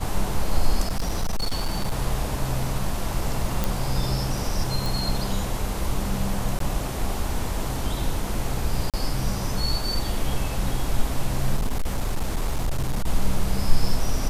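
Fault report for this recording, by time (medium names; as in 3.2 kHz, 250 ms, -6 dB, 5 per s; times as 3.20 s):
0.81–1.92 s: clipped -19.5 dBFS
3.64 s: pop
4.86 s: pop
6.59–6.60 s: dropout 13 ms
8.90–8.94 s: dropout 37 ms
11.56–13.08 s: clipped -19 dBFS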